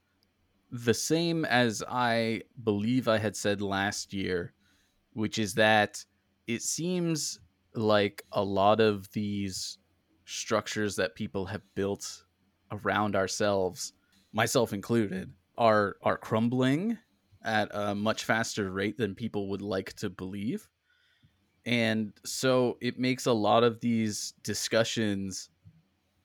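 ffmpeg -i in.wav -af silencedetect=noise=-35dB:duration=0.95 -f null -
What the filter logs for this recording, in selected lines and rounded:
silence_start: 20.57
silence_end: 21.66 | silence_duration: 1.10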